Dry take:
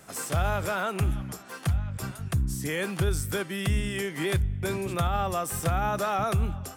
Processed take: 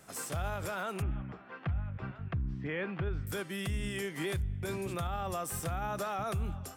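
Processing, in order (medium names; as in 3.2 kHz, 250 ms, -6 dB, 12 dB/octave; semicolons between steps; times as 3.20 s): 1.02–3.27 s: low-pass 2.7 kHz 24 dB/octave; peak limiter -20.5 dBFS, peak gain reduction 5 dB; trim -5.5 dB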